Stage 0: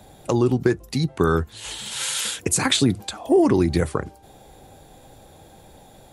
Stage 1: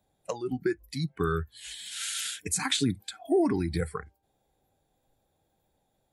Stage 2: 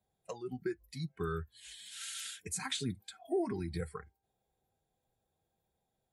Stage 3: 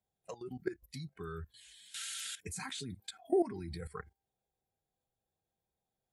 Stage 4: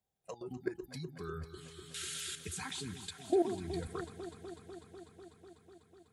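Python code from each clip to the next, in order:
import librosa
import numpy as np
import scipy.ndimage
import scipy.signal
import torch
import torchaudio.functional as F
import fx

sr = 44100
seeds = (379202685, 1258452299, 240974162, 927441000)

y1 = fx.noise_reduce_blind(x, sr, reduce_db=19)
y1 = y1 * librosa.db_to_amplitude(-7.5)
y2 = fx.notch_comb(y1, sr, f0_hz=290.0)
y2 = y2 * librosa.db_to_amplitude(-8.0)
y3 = fx.level_steps(y2, sr, step_db=16)
y3 = y3 * librosa.db_to_amplitude(6.0)
y4 = fx.echo_alternate(y3, sr, ms=124, hz=1100.0, feedback_pct=88, wet_db=-10.5)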